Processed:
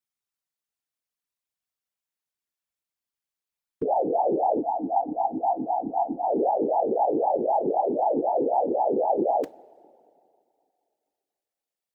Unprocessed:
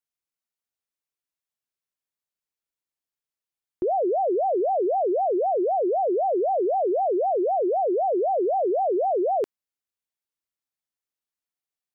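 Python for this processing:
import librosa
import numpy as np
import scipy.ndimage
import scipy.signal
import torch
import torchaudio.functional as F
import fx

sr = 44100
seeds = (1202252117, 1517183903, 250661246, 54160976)

y = fx.peak_eq(x, sr, hz=410.0, db=-3.0, octaves=0.77)
y = fx.rev_double_slope(y, sr, seeds[0], early_s=0.27, late_s=2.5, knee_db=-16, drr_db=14.5)
y = fx.whisperise(y, sr, seeds[1])
y = fx.spec_box(y, sr, start_s=4.6, length_s=1.66, low_hz=330.0, high_hz=660.0, gain_db=-18)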